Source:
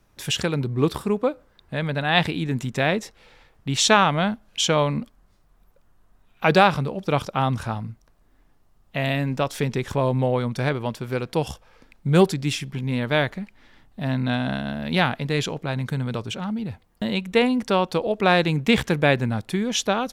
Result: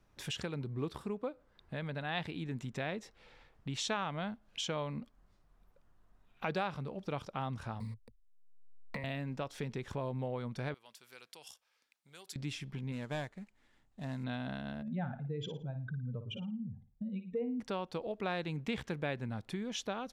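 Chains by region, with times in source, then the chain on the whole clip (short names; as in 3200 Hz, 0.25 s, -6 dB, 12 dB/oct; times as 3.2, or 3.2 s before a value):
7.8–9.04 level-crossing sampler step -41 dBFS + ripple EQ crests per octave 0.94, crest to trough 18 dB + three-band squash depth 100%
10.74–12.36 compressor, threshold -20 dBFS + differentiator
12.92–14.24 CVSD 64 kbps + bell 7300 Hz +6 dB 0.33 oct + upward expander, over -38 dBFS
14.82–17.6 spectral contrast raised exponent 2.4 + flutter echo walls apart 9.6 m, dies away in 0.33 s
whole clip: high shelf 9300 Hz -11.5 dB; compressor 2:1, threshold -34 dBFS; gain -7.5 dB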